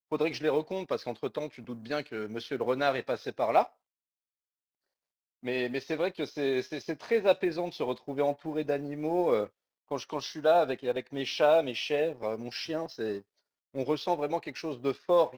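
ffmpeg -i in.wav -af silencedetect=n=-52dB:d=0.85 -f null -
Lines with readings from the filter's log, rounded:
silence_start: 3.69
silence_end: 5.43 | silence_duration: 1.74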